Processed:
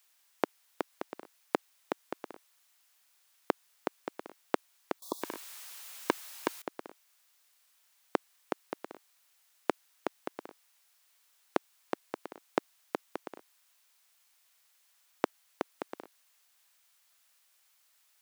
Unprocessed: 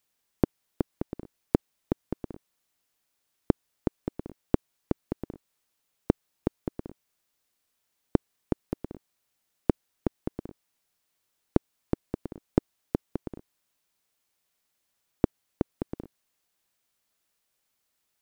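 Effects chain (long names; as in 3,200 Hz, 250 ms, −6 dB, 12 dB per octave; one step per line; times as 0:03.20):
0:05.02–0:06.62: power curve on the samples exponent 0.7
high-pass filter 910 Hz 12 dB per octave
0:05.00–0:05.22: time-frequency box erased 1,200–3,300 Hz
level +9 dB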